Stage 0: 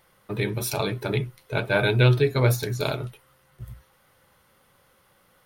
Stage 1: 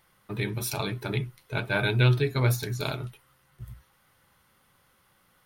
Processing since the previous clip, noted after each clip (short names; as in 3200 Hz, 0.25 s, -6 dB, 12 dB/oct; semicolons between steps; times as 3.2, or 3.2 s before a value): bell 520 Hz -6.5 dB 0.79 oct; gain -2.5 dB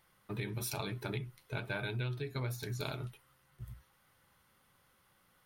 compressor 10:1, threshold -29 dBFS, peak gain reduction 13 dB; gain -5 dB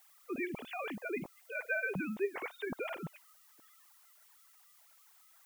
sine-wave speech; added noise blue -64 dBFS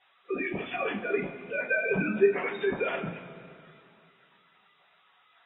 two-slope reverb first 0.22 s, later 2.6 s, from -20 dB, DRR -8 dB; AAC 16 kbps 22050 Hz